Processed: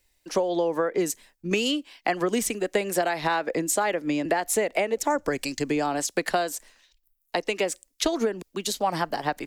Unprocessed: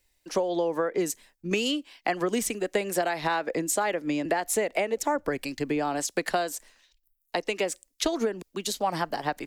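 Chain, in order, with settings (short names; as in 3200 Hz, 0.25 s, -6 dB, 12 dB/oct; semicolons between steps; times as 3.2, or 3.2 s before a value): 5.1–5.87 bell 6700 Hz +10 dB 1 oct; gain +2 dB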